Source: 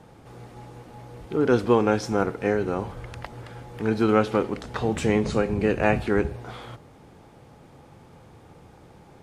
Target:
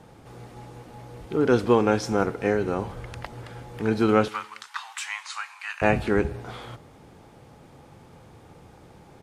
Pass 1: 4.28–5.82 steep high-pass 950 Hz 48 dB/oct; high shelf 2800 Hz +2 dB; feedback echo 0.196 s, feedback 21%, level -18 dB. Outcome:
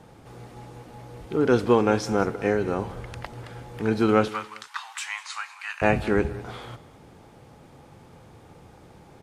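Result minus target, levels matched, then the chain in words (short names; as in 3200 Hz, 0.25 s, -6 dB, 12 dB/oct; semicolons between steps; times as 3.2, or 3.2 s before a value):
echo-to-direct +7.5 dB
4.28–5.82 steep high-pass 950 Hz 48 dB/oct; high shelf 2800 Hz +2 dB; feedback echo 0.196 s, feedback 21%, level -25.5 dB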